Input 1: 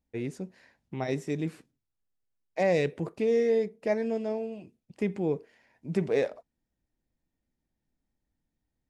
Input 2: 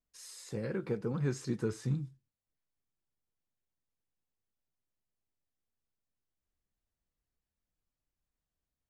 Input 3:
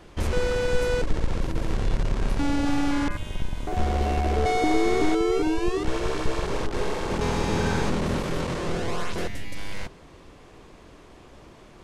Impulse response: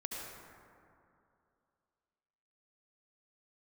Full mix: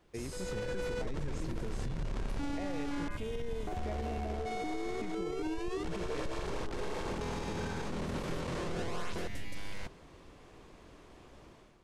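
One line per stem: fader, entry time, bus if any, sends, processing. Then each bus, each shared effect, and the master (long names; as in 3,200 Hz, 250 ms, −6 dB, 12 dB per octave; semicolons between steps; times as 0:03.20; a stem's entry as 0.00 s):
−4.5 dB, 0.00 s, bus A, no send, no processing
+2.5 dB, 0.00 s, bus A, no send, no processing
−18.5 dB, 0.00 s, no bus, no send, brickwall limiter −21 dBFS, peak gain reduction 10.5 dB; automatic gain control gain up to 12 dB
bus A: 0.0 dB, downward compressor, threshold −37 dBFS, peak gain reduction 12 dB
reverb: not used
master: brickwall limiter −28.5 dBFS, peak gain reduction 5 dB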